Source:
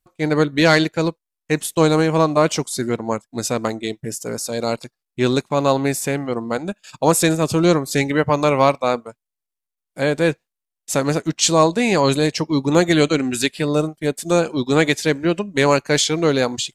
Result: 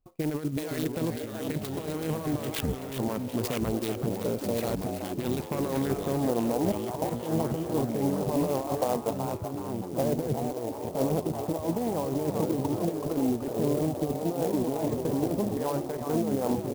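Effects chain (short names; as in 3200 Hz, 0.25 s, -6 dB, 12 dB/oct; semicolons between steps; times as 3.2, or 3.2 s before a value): Wiener smoothing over 25 samples; 15.47–16.13 tilt shelf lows -6.5 dB, about 1100 Hz; negative-ratio compressor -23 dBFS, ratio -0.5; limiter -19 dBFS, peak gain reduction 13 dB; low-pass sweep 4700 Hz -> 800 Hz, 5.13–6.24; 2.37 tape stop 0.62 s; echoes that change speed 0.48 s, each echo -3 st, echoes 3, each echo -6 dB; frequency-shifting echo 0.378 s, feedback 36%, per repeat +150 Hz, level -8 dB; clock jitter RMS 0.049 ms; gain -2.5 dB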